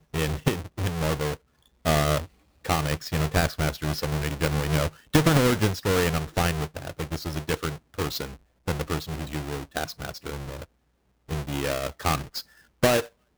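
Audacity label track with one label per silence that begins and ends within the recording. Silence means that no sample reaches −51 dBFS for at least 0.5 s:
10.650000	11.280000	silence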